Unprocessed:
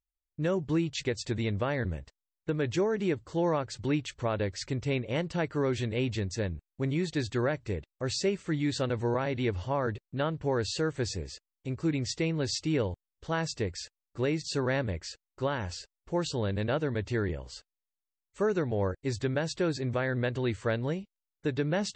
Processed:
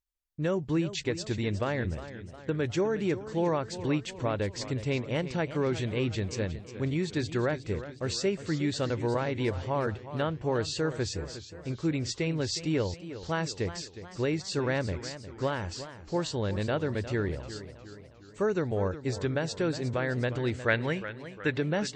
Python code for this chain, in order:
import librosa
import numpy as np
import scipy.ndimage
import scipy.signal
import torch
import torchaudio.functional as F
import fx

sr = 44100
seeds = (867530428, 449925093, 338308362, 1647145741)

y = fx.peak_eq(x, sr, hz=2000.0, db=12.5, octaves=1.4, at=(20.68, 21.58))
y = fx.echo_warbled(y, sr, ms=360, feedback_pct=52, rate_hz=2.8, cents=101, wet_db=-13)